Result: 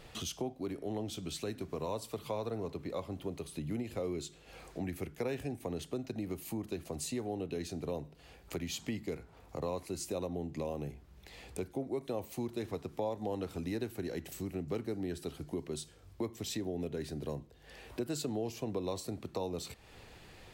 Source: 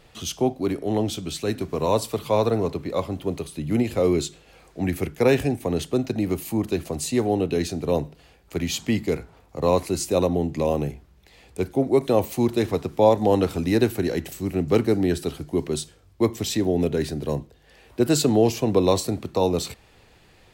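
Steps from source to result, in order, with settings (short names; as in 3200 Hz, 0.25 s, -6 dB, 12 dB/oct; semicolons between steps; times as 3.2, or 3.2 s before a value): compressor 3:1, threshold -40 dBFS, peak gain reduction 20.5 dB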